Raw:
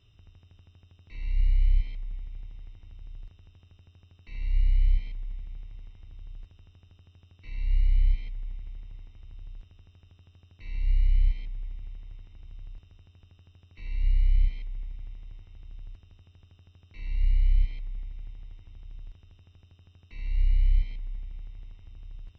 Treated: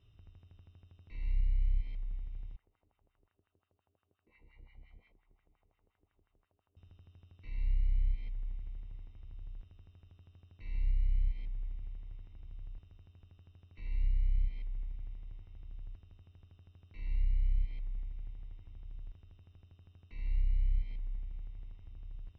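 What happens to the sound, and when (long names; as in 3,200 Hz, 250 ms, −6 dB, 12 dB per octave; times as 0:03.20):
0:02.56–0:06.77: auto-filter band-pass sine 5.7 Hz 360–1,700 Hz
whole clip: downward compressor, threshold −23 dBFS; high-shelf EQ 2,800 Hz −10.5 dB; level −3 dB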